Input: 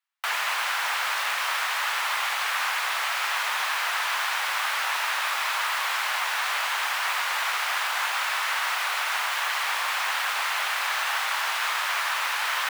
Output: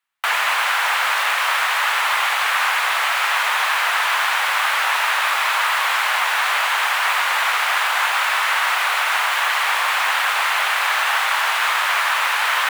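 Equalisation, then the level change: peaking EQ 5.3 kHz -5 dB 0.85 oct; treble shelf 11 kHz -5 dB; +8.5 dB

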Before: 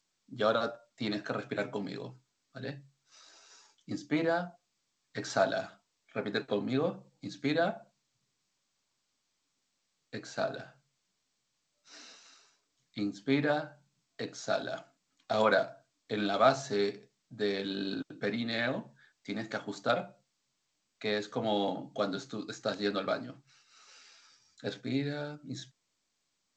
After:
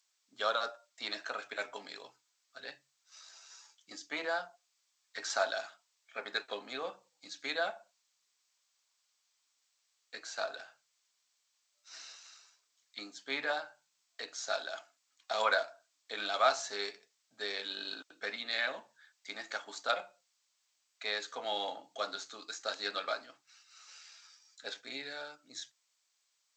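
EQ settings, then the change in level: high-pass 810 Hz 12 dB/octave; treble shelf 4.9 kHz +5.5 dB; 0.0 dB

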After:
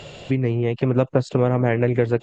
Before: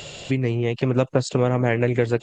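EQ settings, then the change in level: low-pass 1.8 kHz 6 dB/octave; +1.5 dB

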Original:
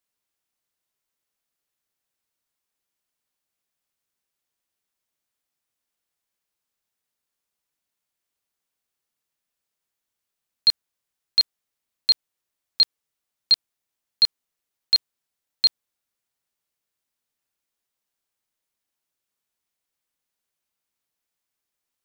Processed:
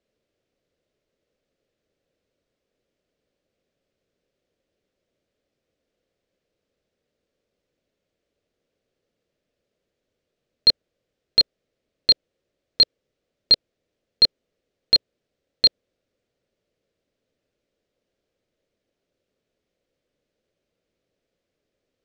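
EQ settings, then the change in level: distance through air 140 m; resonant low shelf 700 Hz +8.5 dB, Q 3; +7.0 dB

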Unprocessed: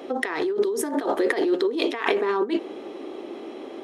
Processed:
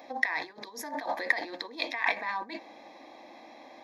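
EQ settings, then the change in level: dynamic bell 2.1 kHz, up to +4 dB, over -36 dBFS, Q 1; bass shelf 460 Hz -9.5 dB; static phaser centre 2 kHz, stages 8; -1.5 dB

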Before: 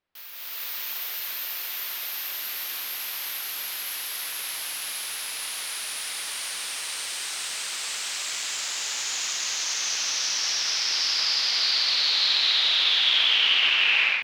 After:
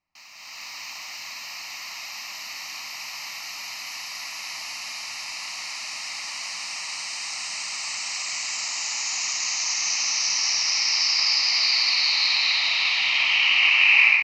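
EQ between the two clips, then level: low-pass 9.3 kHz 24 dB/octave; dynamic bell 2.3 kHz, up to +5 dB, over -37 dBFS, Q 3.8; static phaser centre 2.3 kHz, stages 8; +4.0 dB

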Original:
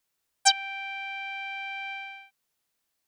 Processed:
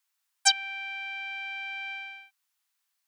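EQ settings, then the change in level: high-pass 880 Hz 24 dB/octave; 0.0 dB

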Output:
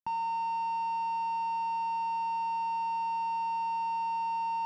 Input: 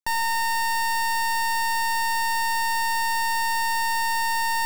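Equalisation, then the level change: high-pass 130 Hz 12 dB/octave; tape spacing loss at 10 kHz 42 dB; static phaser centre 2.7 kHz, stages 8; 0.0 dB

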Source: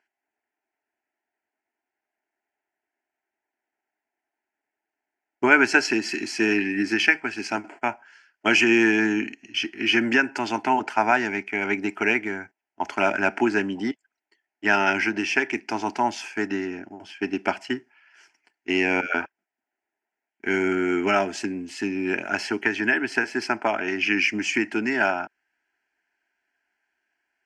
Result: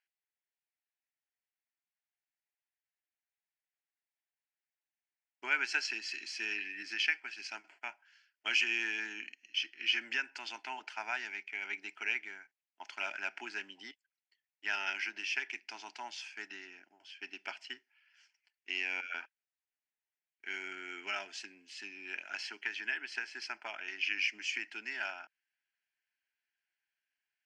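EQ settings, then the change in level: band-pass filter 3.7 kHz, Q 1.5; -5.5 dB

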